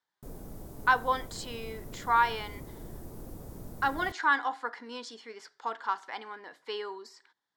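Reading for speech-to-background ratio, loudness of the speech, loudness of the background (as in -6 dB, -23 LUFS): 15.5 dB, -31.0 LUFS, -46.5 LUFS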